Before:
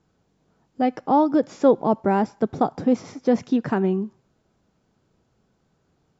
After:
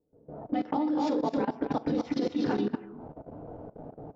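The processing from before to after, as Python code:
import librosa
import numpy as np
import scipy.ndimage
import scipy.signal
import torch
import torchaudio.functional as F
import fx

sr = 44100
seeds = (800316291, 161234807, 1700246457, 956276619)

p1 = fx.recorder_agc(x, sr, target_db=-11.5, rise_db_per_s=70.0, max_gain_db=30)
p2 = fx.stretch_grains(p1, sr, factor=0.67, grain_ms=26.0)
p3 = fx.peak_eq(p2, sr, hz=69.0, db=-4.5, octaves=0.44)
p4 = p3 + fx.echo_multitap(p3, sr, ms=(228, 249), db=(-12.0, -5.5), dry=0)
p5 = fx.rev_fdn(p4, sr, rt60_s=0.48, lf_ratio=0.8, hf_ratio=0.85, size_ms=20.0, drr_db=2.0)
p6 = fx.dynamic_eq(p5, sr, hz=290.0, q=3.3, threshold_db=-29.0, ratio=4.0, max_db=4)
p7 = fx.level_steps(p6, sr, step_db=18)
p8 = fx.envelope_lowpass(p7, sr, base_hz=480.0, top_hz=4000.0, q=3.2, full_db=-17.0, direction='up')
y = p8 * 10.0 ** (-9.0 / 20.0)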